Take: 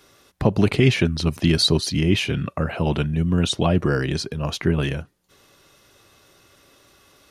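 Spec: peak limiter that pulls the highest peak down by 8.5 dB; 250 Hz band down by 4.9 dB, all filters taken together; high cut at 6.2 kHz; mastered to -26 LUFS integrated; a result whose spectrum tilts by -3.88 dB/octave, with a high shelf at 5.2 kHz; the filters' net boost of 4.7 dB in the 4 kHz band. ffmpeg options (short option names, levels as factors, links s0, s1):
-af "lowpass=6200,equalizer=f=250:t=o:g=-8,equalizer=f=4000:t=o:g=8.5,highshelf=f=5200:g=-6,volume=0.794,alimiter=limit=0.2:level=0:latency=1"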